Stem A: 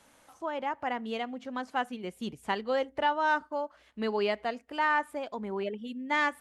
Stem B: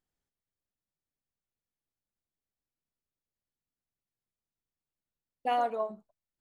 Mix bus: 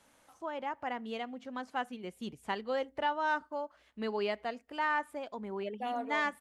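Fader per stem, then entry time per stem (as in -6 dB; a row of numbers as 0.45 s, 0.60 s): -4.5 dB, -8.0 dB; 0.00 s, 0.35 s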